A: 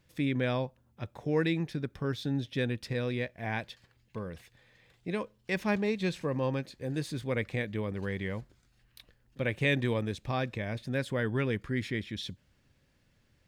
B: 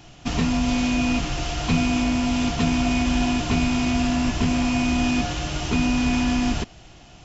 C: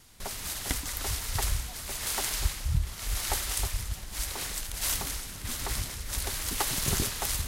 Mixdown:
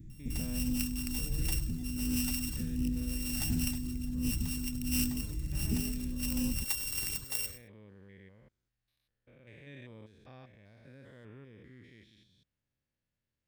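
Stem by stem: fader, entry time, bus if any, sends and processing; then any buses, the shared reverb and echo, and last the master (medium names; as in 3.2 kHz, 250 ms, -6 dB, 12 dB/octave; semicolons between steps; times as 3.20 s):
-19.0 dB, 0.00 s, no send, no echo send, spectrogram pixelated in time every 200 ms
-3.5 dB, 0.00 s, no send, no echo send, inverse Chebyshev band-stop 800–4100 Hz, stop band 60 dB; compression 6:1, threshold -30 dBFS, peak gain reduction 12.5 dB; phaser 1.4 Hz, delay 2.6 ms, feedback 44%
0.0 dB, 0.10 s, no send, echo send -16 dB, sorted samples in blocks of 16 samples; reverb removal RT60 0.7 s; pre-emphasis filter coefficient 0.9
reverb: none
echo: delay 101 ms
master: loudspeaker Doppler distortion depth 0.11 ms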